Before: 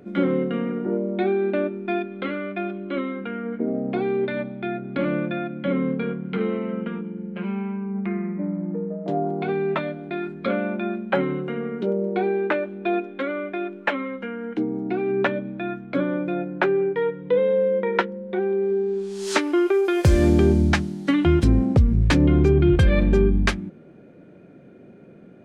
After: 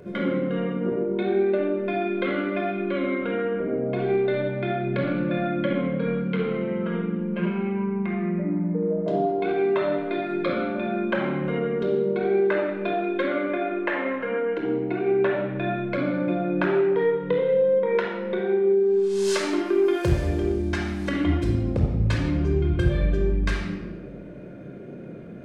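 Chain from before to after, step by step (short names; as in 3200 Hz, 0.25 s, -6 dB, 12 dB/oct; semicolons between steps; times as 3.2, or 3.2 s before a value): 13.42–15.32 tone controls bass -6 dB, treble -10 dB; compressor 10:1, threshold -28 dBFS, peak gain reduction 16.5 dB; reverb RT60 1.2 s, pre-delay 24 ms, DRR -1 dB; gain +1 dB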